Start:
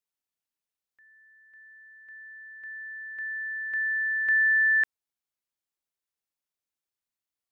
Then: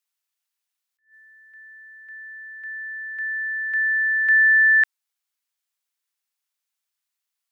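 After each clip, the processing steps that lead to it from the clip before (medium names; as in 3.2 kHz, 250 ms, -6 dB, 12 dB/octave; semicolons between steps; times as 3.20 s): Bessel high-pass 1.2 kHz; attacks held to a fixed rise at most 190 dB/s; trim +8 dB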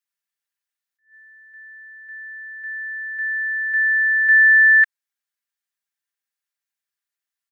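peaking EQ 1.7 kHz +8.5 dB 0.47 oct; comb 5 ms; trim -7 dB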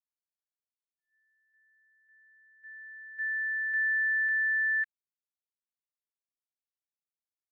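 peak limiter -19 dBFS, peak gain reduction 10.5 dB; upward expansion 2.5:1, over -36 dBFS; trim -5.5 dB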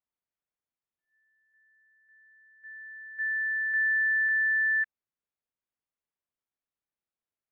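distance through air 450 m; trim +6 dB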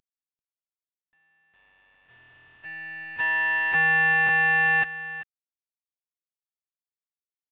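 CVSD coder 16 kbps; delay 390 ms -15 dB; trim +5.5 dB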